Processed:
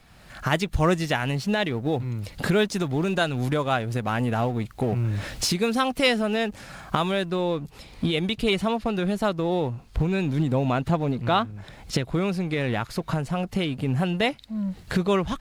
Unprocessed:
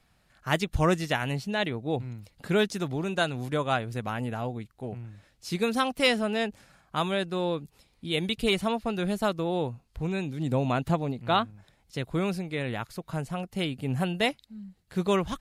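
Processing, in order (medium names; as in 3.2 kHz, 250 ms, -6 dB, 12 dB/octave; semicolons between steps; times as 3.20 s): companding laws mixed up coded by mu; recorder AGC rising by 27 dB/s; treble shelf 8.1 kHz -4.5 dB, from 7.30 s -11 dB; trim +2 dB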